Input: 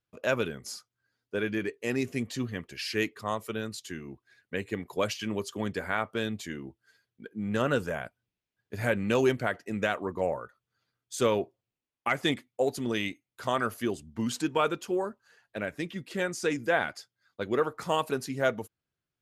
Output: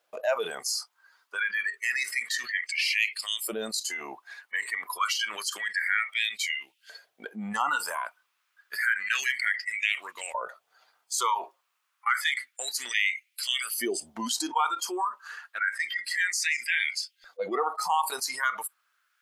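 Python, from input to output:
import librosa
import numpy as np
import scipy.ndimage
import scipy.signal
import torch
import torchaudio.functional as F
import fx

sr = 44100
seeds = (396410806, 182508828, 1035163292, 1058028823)

y = fx.filter_lfo_highpass(x, sr, shape='saw_up', hz=0.29, low_hz=600.0, high_hz=2900.0, q=3.7)
y = fx.noise_reduce_blind(y, sr, reduce_db=20)
y = fx.env_flatten(y, sr, amount_pct=70)
y = y * librosa.db_to_amplitude(-5.5)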